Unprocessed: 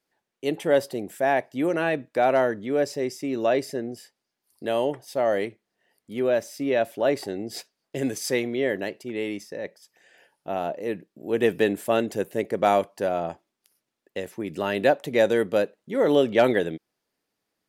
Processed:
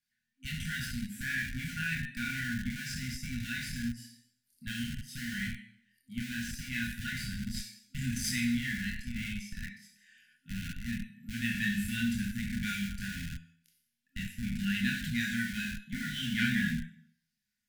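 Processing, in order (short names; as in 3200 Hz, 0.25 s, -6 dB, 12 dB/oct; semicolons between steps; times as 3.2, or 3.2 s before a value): Schroeder reverb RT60 0.63 s, combs from 30 ms, DRR 2.5 dB; chorus voices 4, 0.23 Hz, delay 25 ms, depth 1.2 ms; in parallel at -9 dB: Schmitt trigger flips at -28.5 dBFS; on the sum: FFT band-reject 260–1400 Hz; gain -2.5 dB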